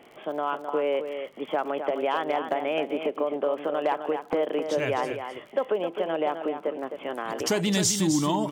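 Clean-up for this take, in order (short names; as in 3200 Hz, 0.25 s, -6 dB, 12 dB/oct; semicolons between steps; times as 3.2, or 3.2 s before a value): clip repair -16 dBFS; de-click; inverse comb 0.26 s -8 dB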